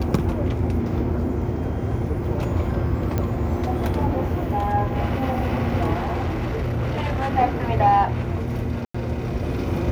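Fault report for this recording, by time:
3.18 s: pop -11 dBFS
5.94–7.32 s: clipped -20.5 dBFS
8.85–8.95 s: dropout 95 ms

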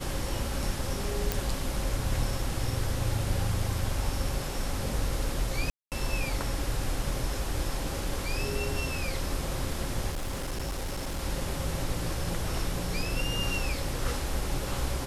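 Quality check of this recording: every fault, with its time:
1.32 s: pop
5.70–5.92 s: dropout 218 ms
10.10–11.19 s: clipped -29 dBFS

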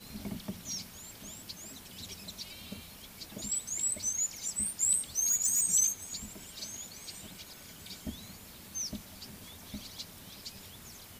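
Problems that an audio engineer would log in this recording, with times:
5.18–5.64 s: clipped -24 dBFS

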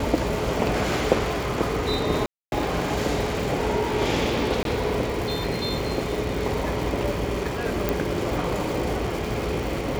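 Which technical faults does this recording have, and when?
crackle 480 per s -30 dBFS
2.26–2.52 s: dropout 261 ms
4.63–4.65 s: dropout 22 ms
7.89 s: pop

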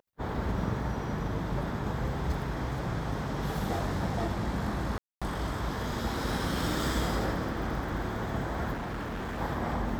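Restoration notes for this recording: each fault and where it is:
4.98–5.22 s: dropout 236 ms
8.73–9.41 s: clipped -32.5 dBFS

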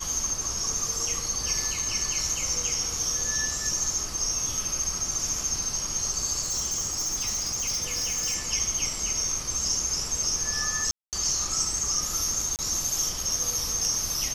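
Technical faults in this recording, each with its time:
6.42–8.36 s: clipped -24.5 dBFS
10.91–11.13 s: dropout 218 ms
12.56–12.59 s: dropout 28 ms

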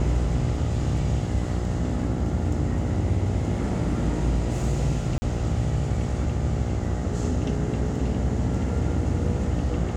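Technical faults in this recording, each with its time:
buzz 60 Hz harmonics 14 -29 dBFS
5.18–5.22 s: dropout 40 ms

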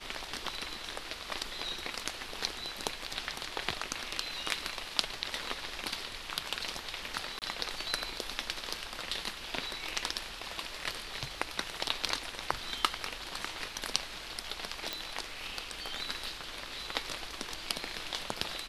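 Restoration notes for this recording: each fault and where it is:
7.39–7.42 s: dropout 28 ms
14.93 s: pop

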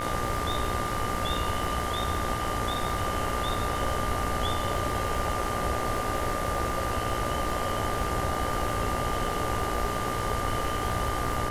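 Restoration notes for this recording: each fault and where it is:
buzz 60 Hz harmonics 36 -35 dBFS
crackle 130 per s -36 dBFS
whine 1.2 kHz -33 dBFS

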